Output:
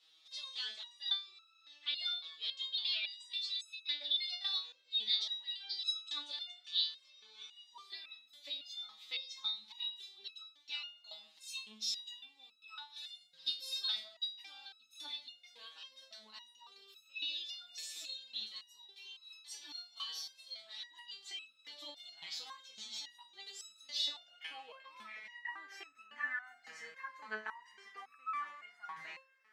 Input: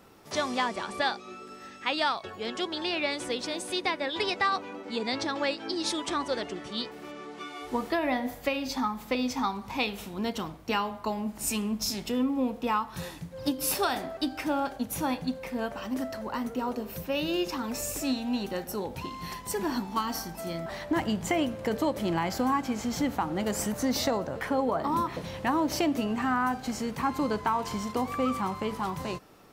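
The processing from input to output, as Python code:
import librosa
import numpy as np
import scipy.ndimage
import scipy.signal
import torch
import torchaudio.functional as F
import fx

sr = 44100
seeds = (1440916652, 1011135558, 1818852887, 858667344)

y = fx.high_shelf(x, sr, hz=9300.0, db=-10.5)
y = fx.filter_sweep_bandpass(y, sr, from_hz=3700.0, to_hz=1800.0, start_s=23.93, end_s=25.62, q=7.0)
y = fx.high_shelf(y, sr, hz=3400.0, db=11.5)
y = fx.hum_notches(y, sr, base_hz=50, count=5)
y = fx.resonator_held(y, sr, hz=3.6, low_hz=160.0, high_hz=1300.0)
y = y * librosa.db_to_amplitude(15.0)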